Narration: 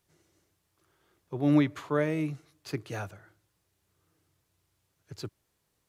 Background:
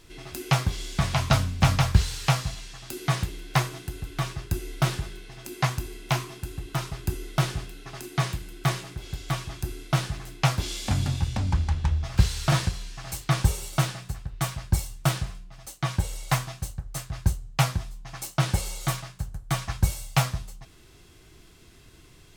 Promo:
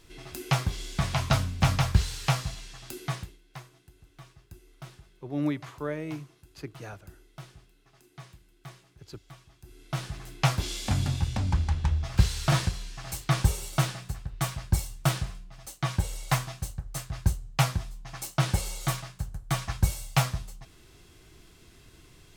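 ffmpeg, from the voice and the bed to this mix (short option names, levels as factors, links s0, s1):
-filter_complex "[0:a]adelay=3900,volume=0.531[s0];[1:a]volume=6.68,afade=t=out:st=2.87:d=0.52:silence=0.125893,afade=t=in:st=9.63:d=0.81:silence=0.105925[s1];[s0][s1]amix=inputs=2:normalize=0"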